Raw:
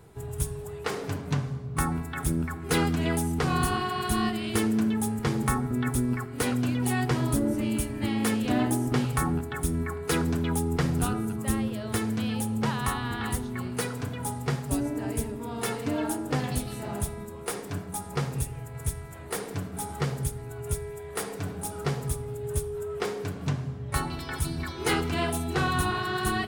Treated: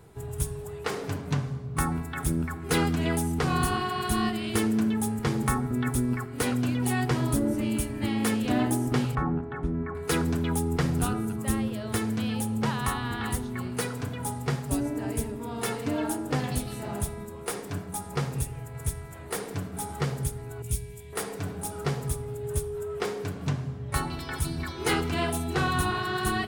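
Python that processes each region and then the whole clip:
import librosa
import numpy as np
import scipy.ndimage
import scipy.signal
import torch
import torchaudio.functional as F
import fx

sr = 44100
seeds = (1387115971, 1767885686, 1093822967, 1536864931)

y = fx.chain(x, sr, fx.lowpass(hz=1500.0, slope=12),
    fx.peak_eq(hz=88.0, db=-12.0, octaves=0.21), at=(9.15, 9.95))
y = fx.chain(y, sr, fx.band_shelf(hz=800.0, db=-15.0, octaves=2.6),
    fx.doubler(ms=17.0, db=-2.5), at=(20.62, 21.13))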